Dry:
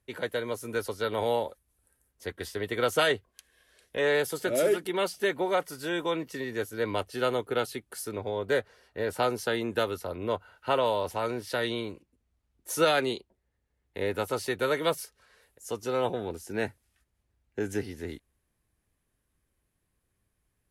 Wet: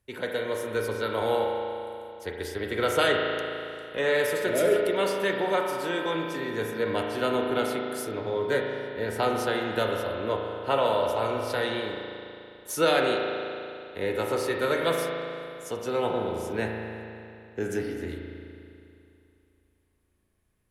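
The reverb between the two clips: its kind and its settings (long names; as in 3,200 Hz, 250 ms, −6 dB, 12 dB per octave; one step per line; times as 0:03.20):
spring reverb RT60 2.7 s, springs 36 ms, chirp 30 ms, DRR 0.5 dB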